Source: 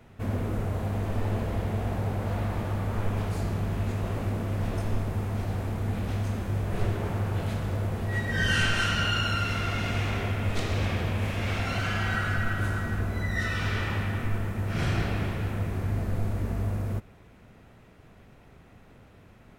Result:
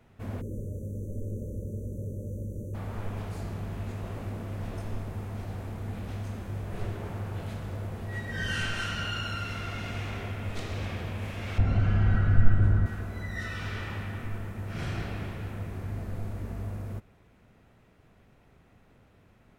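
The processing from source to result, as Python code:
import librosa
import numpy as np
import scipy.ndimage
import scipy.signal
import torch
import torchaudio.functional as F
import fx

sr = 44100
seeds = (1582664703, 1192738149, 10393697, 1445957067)

y = fx.spec_erase(x, sr, start_s=0.41, length_s=2.33, low_hz=620.0, high_hz=5800.0)
y = fx.tilt_eq(y, sr, slope=-4.0, at=(11.58, 12.86))
y = y * 10.0 ** (-6.5 / 20.0)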